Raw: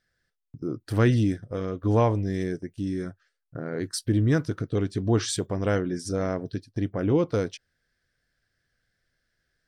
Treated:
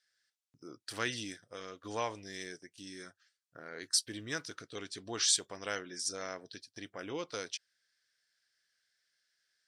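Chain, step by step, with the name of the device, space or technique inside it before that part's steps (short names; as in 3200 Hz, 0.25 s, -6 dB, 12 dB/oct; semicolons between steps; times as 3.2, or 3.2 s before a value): piezo pickup straight into a mixer (LPF 6400 Hz 12 dB/oct; differentiator); gain +8 dB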